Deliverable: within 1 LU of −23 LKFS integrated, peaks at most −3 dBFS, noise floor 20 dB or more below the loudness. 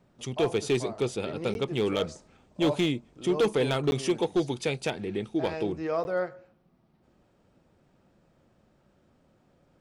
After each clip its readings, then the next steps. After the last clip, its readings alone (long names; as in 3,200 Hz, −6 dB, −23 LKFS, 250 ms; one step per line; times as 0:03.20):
share of clipped samples 0.6%; peaks flattened at −18.5 dBFS; number of dropouts 3; longest dropout 11 ms; integrated loudness −29.0 LKFS; sample peak −18.5 dBFS; target loudness −23.0 LKFS
→ clipped peaks rebuilt −18.5 dBFS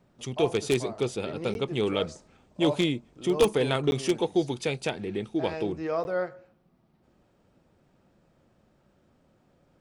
share of clipped samples 0.0%; number of dropouts 3; longest dropout 11 ms
→ repair the gap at 0:01.54/0:03.91/0:06.04, 11 ms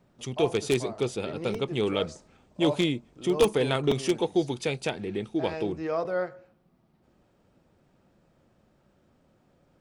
number of dropouts 0; integrated loudness −28.0 LKFS; sample peak −9.5 dBFS; target loudness −23.0 LKFS
→ level +5 dB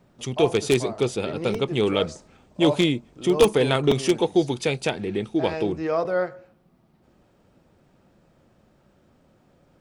integrated loudness −23.0 LKFS; sample peak −4.5 dBFS; background noise floor −61 dBFS